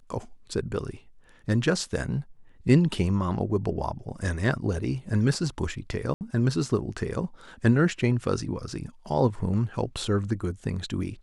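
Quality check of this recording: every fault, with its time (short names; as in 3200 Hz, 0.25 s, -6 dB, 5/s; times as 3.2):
6.14–6.21 gap 69 ms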